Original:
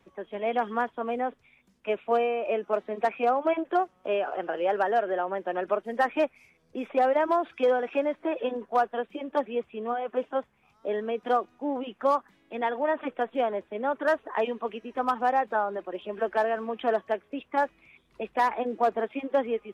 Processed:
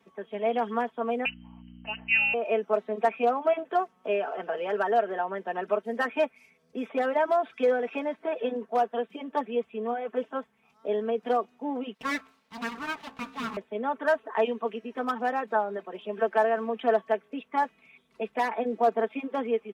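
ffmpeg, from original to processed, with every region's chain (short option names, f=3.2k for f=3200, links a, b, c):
-filter_complex "[0:a]asettb=1/sr,asplit=3[a][b][c];[a]atrim=end=1.254[d];[b]atrim=start=1.25:end=2.34,asetpts=PTS-STARTPTS,afade=t=in:d=0.004:c=qsin,afade=t=out:st=1.086:d=0.004:c=qsin,lowpass=f=2.7k:t=q:w=0.5098,lowpass=f=2.7k:t=q:w=0.6013,lowpass=f=2.7k:t=q:w=0.9,lowpass=f=2.7k:t=q:w=2.563,afreqshift=-3200,aeval=exprs='val(0)+0.01*(sin(2*PI*60*n/s)+sin(2*PI*2*60*n/s)/2+sin(2*PI*3*60*n/s)/3+sin(2*PI*4*60*n/s)/4+sin(2*PI*5*60*n/s)/5)':c=same[e];[c]atrim=start=2.336[f];[d][e]acrossfade=d=0.004:c1=hsin:c2=qsin[g];[g][f]acrossfade=d=0.004:c1=qsin:c2=hsin,asettb=1/sr,asplit=3[h][i][j];[h]atrim=end=11.944[k];[i]atrim=start=11.94:end=13.57,asetpts=PTS-STARTPTS,afade=t=in:d=0.004:c=qsin,afade=t=out:st=1.626:d=0.004:c=qsin,lowshelf=f=240:g=-8.5,bandreject=f=66.73:t=h:w=4,bandreject=f=133.46:t=h:w=4,bandreject=f=200.19:t=h:w=4,bandreject=f=266.92:t=h:w=4,bandreject=f=333.65:t=h:w=4,bandreject=f=400.38:t=h:w=4,bandreject=f=467.11:t=h:w=4,bandreject=f=533.84:t=h:w=4,bandreject=f=600.57:t=h:w=4,bandreject=f=667.3:t=h:w=4,bandreject=f=734.03:t=h:w=4,bandreject=f=800.76:t=h:w=4,aeval=exprs='abs(val(0))':c=same[l];[j]atrim=start=13.566[m];[k][l]acrossfade=d=0.004:c1=hsin:c2=qsin[n];[n][m]acrossfade=d=0.004:c1=qsin:c2=hsin,highpass=120,aecho=1:1:4.5:0.68,volume=-2dB"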